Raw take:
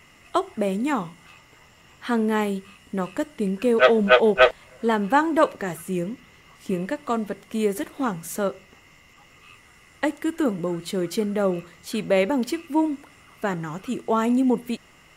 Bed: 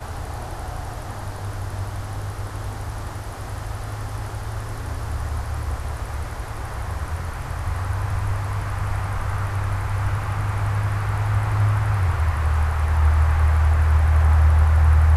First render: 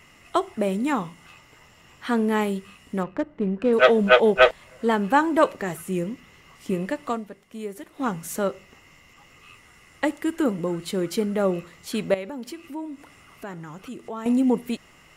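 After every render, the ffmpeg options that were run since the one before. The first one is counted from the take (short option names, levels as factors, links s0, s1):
-filter_complex "[0:a]asettb=1/sr,asplit=3[s0][s1][s2];[s0]atrim=end=3.034[s3];[s1]atrim=start=3.03:end=3.73,asetpts=PTS-STARTPTS,afade=t=in:d=0.004:c=qsin,afade=t=out:st=0.696:d=0.004:c=qsin,adynamicsmooth=sensitivity=1.5:basefreq=1100[s4];[s2]atrim=start=3.726[s5];[s3][s4]acrossfade=d=0.004:c1=hsin:c2=qsin[s6];[s6][s5]acrossfade=d=0.004:c1=qsin:c2=hsin,asettb=1/sr,asplit=3[s7][s8][s9];[s7]atrim=end=12.144[s10];[s8]atrim=start=12.14:end=14.26,asetpts=PTS-STARTPTS,afade=t=in:d=0.004:c=qsin,afade=t=out:st=2.116:d=0.004:c=qsin,acompressor=threshold=0.01:ratio=2:attack=3.2:release=140:knee=1:detection=peak[s11];[s9]atrim=start=14.256[s12];[s10][s11]acrossfade=d=0.004:c1=hsin:c2=qsin[s13];[s13][s12]acrossfade=d=0.004:c1=qsin:c2=hsin,asplit=3[s14][s15][s16];[s14]atrim=end=7.31,asetpts=PTS-STARTPTS,afade=t=out:st=7.08:d=0.23:c=qua:silence=0.298538[s17];[s15]atrim=start=7.31:end=7.84,asetpts=PTS-STARTPTS,volume=0.299[s18];[s16]atrim=start=7.84,asetpts=PTS-STARTPTS,afade=t=in:d=0.23:c=qua:silence=0.298538[s19];[s17][s18][s19]concat=n=3:v=0:a=1"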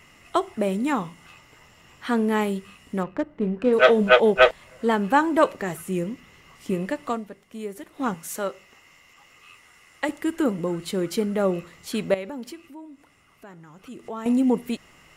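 -filter_complex "[0:a]asettb=1/sr,asplit=3[s0][s1][s2];[s0]atrim=end=3.374[s3];[s1]atrim=start=3.37:end=4.09,asetpts=PTS-STARTPTS,afade=t=in:d=0.004:c=qsin,afade=t=out:st=0.716:d=0.004:c=qsin,asplit=2[s4][s5];[s5]adelay=28,volume=0.282[s6];[s4][s6]amix=inputs=2:normalize=0,atrim=end_sample=31752[s7];[s2]atrim=start=4.086[s8];[s3][s7]acrossfade=d=0.004:c1=hsin:c2=qsin[s9];[s9][s8]acrossfade=d=0.004:c1=qsin:c2=hsin,asettb=1/sr,asplit=3[s10][s11][s12];[s10]atrim=end=8.144[s13];[s11]atrim=start=8.14:end=10.09,asetpts=PTS-STARTPTS,afade=t=in:d=0.004:c=qsin,afade=t=out:st=1.946:d=0.004:c=qsin,lowshelf=f=360:g=-10.5[s14];[s12]atrim=start=10.086[s15];[s13][s14]acrossfade=d=0.004:c1=hsin:c2=qsin[s16];[s16][s15]acrossfade=d=0.004:c1=qsin:c2=hsin,asplit=3[s17][s18][s19];[s17]atrim=end=12.75,asetpts=PTS-STARTPTS,afade=t=out:st=12.4:d=0.35:silence=0.375837[s20];[s18]atrim=start=12.75:end=13.74,asetpts=PTS-STARTPTS,volume=0.376[s21];[s19]atrim=start=13.74,asetpts=PTS-STARTPTS,afade=t=in:d=0.35:silence=0.375837[s22];[s20][s21][s22]concat=n=3:v=0:a=1"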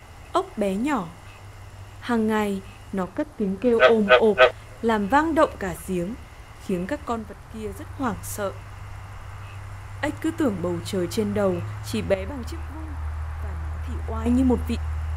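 -filter_complex "[1:a]volume=0.211[s0];[0:a][s0]amix=inputs=2:normalize=0"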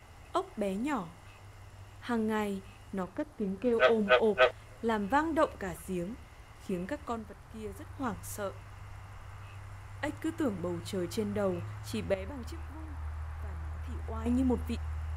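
-af "volume=0.355"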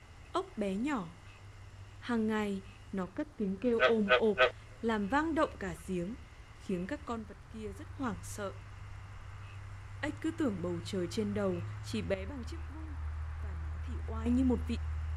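-af "lowpass=8200,equalizer=f=740:t=o:w=1.1:g=-5.5"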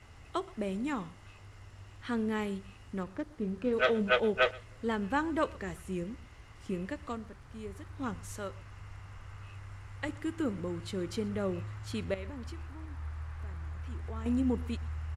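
-af "aecho=1:1:123:0.075"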